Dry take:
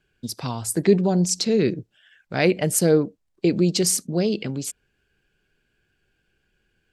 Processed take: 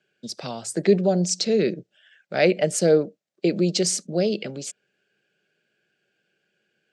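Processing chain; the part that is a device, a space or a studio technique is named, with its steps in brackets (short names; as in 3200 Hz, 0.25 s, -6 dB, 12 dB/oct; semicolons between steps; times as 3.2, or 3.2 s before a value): television speaker (speaker cabinet 170–7800 Hz, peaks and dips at 270 Hz -8 dB, 590 Hz +7 dB, 1000 Hz -10 dB)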